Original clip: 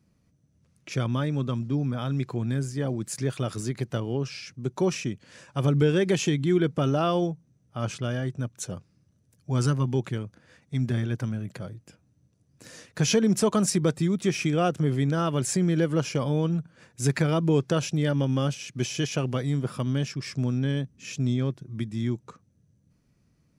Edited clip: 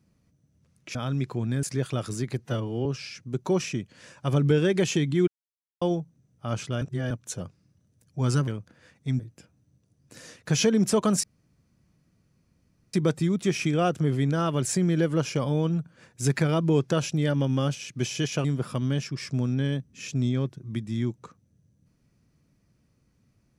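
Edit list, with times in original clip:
0.95–1.94 cut
2.62–3.1 cut
3.86–4.17 stretch 1.5×
6.59–7.13 mute
8.13–8.42 reverse
9.79–10.14 cut
10.86–11.69 cut
13.73 insert room tone 1.70 s
19.24–19.49 cut

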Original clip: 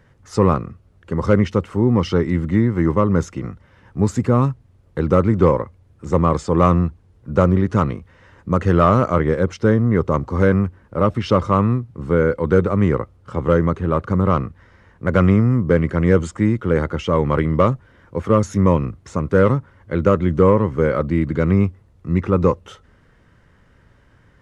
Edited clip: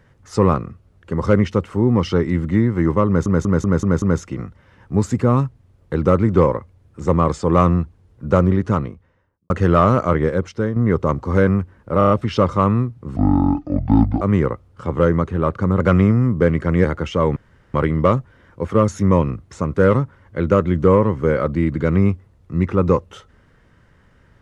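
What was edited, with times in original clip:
3.07 stutter 0.19 s, 6 plays
7.54–8.55 studio fade out
9.29–9.81 fade out linear, to -8.5 dB
11.03 stutter 0.03 s, 5 plays
12.09–12.7 speed 58%
14.29–15.09 cut
16.13–16.77 cut
17.29 insert room tone 0.38 s

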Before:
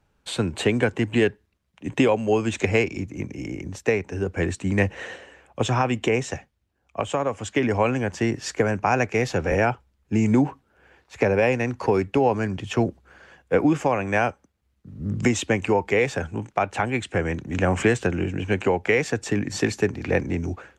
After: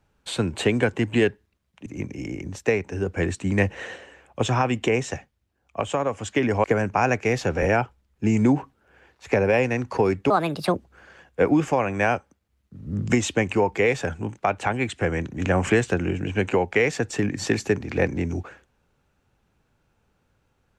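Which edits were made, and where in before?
1.86–3.06 cut
7.84–8.53 cut
12.19–12.88 speed 153%

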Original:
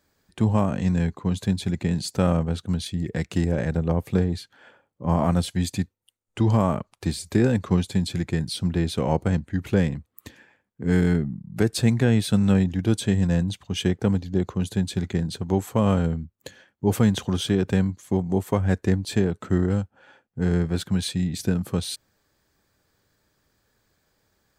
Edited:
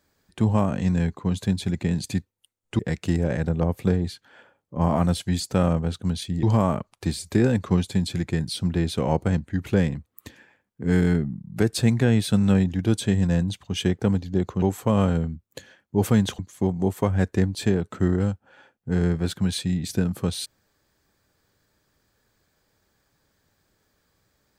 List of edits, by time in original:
2.04–3.07 swap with 5.68–6.43
14.62–15.51 cut
17.28–17.89 cut

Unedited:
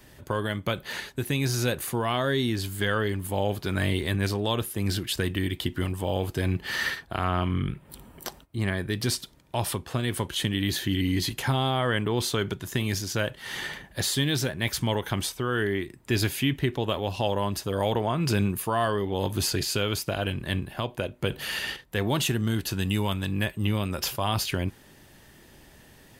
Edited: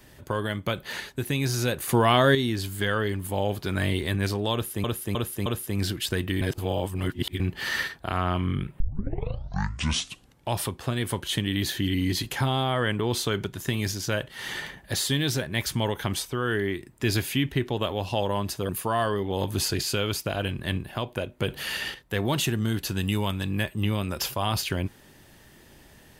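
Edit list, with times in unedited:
1.89–2.35 gain +7 dB
4.53–4.84 loop, 4 plays
5.48–6.47 reverse
7.87 tape start 1.72 s
17.76–18.51 cut

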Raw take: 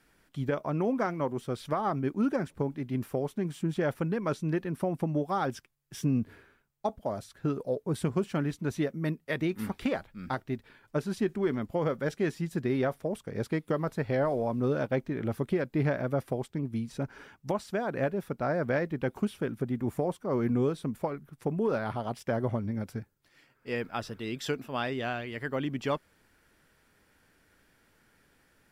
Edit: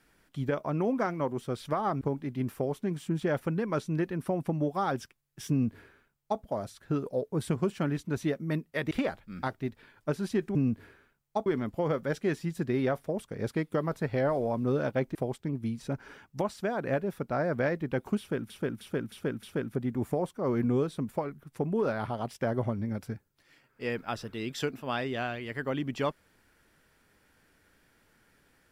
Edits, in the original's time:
2.01–2.55 cut
6.04–6.95 copy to 11.42
9.45–9.78 cut
15.11–16.25 cut
19.29–19.6 loop, 5 plays

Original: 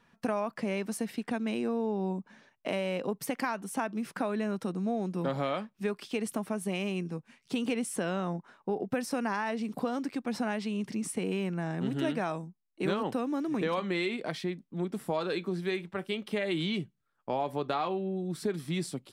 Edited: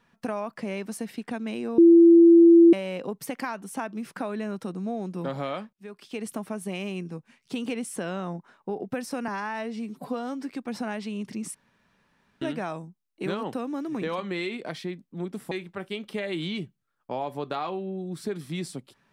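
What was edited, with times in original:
1.78–2.73 bleep 337 Hz -10 dBFS
5.73–6.28 fade in, from -23.5 dB
9.28–10.09 stretch 1.5×
11.14–12.01 room tone
15.11–15.7 cut

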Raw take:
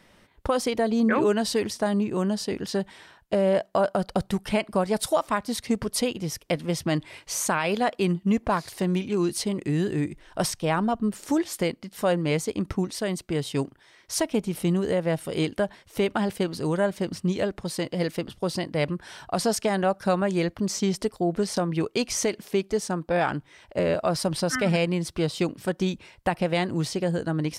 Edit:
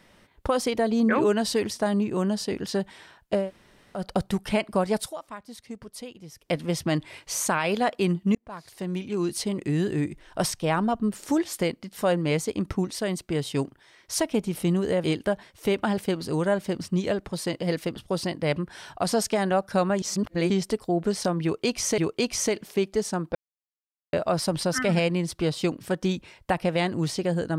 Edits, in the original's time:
3.43–3.99 room tone, crossfade 0.16 s
4.95–6.54 dip -14 dB, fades 0.18 s
8.35–9.93 fade in equal-power
15.04–15.36 cut
20.34–20.82 reverse
21.75–22.3 loop, 2 plays
23.12–23.9 mute

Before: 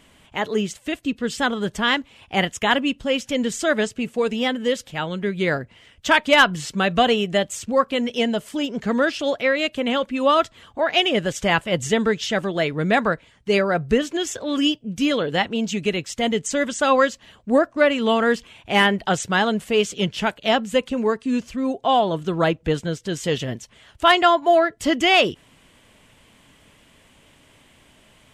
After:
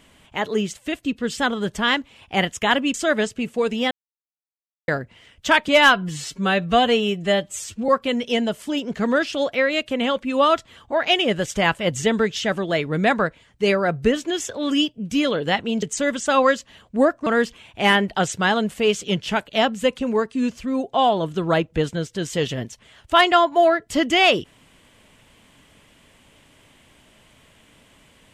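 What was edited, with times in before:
2.94–3.54 cut
4.51–5.48 mute
6.28–7.75 stretch 1.5×
15.69–16.36 cut
17.8–18.17 cut

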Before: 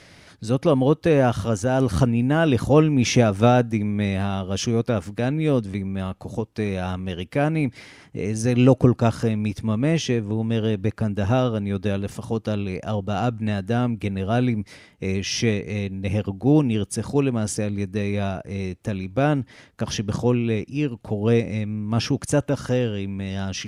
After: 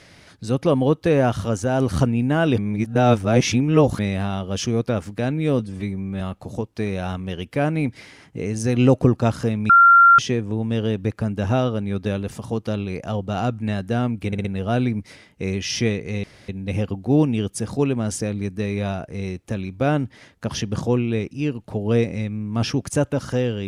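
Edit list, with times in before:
2.58–3.99 reverse
5.59–6 stretch 1.5×
9.49–9.98 bleep 1380 Hz -7.5 dBFS
14.06 stutter 0.06 s, 4 plays
15.85 insert room tone 0.25 s

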